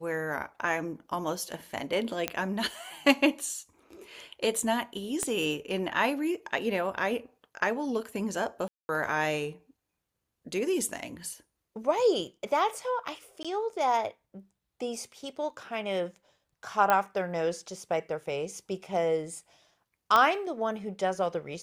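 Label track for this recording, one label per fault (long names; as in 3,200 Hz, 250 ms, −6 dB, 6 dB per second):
2.280000	2.280000	click −12 dBFS
5.230000	5.230000	click −16 dBFS
8.680000	8.890000	drop-out 210 ms
13.430000	13.450000	drop-out 16 ms
16.900000	16.900000	click −11 dBFS
20.160000	20.160000	click −10 dBFS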